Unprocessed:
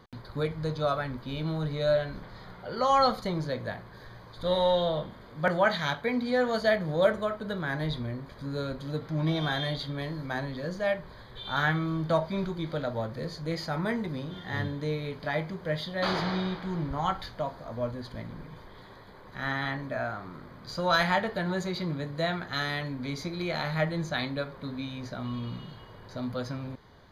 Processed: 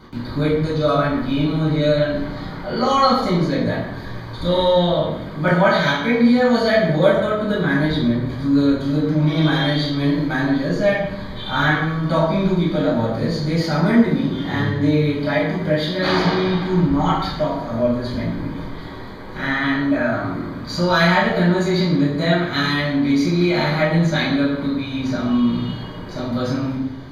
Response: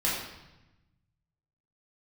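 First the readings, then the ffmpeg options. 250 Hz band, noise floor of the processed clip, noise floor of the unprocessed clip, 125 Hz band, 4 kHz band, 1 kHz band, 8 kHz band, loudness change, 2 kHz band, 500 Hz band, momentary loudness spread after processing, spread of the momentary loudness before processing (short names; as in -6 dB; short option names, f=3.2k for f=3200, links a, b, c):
+16.0 dB, -31 dBFS, -49 dBFS, +12.5 dB, +10.0 dB, +8.5 dB, n/a, +11.5 dB, +10.0 dB, +10.0 dB, 11 LU, 16 LU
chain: -filter_complex "[0:a]equalizer=f=280:w=4.3:g=10,asplit=2[a][b];[b]acompressor=threshold=-33dB:ratio=6,volume=2dB[c];[a][c]amix=inputs=2:normalize=0[d];[1:a]atrim=start_sample=2205,asetrate=52920,aresample=44100[e];[d][e]afir=irnorm=-1:irlink=0,volume=-1.5dB"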